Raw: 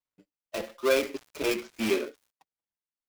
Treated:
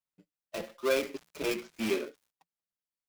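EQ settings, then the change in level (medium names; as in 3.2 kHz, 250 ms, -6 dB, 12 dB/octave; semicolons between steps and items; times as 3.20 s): peaking EQ 170 Hz +8 dB 0.27 oct; -4.0 dB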